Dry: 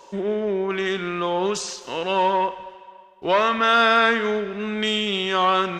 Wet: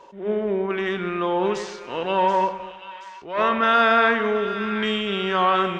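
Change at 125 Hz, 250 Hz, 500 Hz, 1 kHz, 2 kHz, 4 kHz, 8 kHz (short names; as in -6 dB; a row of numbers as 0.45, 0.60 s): +0.5 dB, +0.5 dB, 0.0 dB, 0.0 dB, -0.5 dB, -4.5 dB, under -10 dB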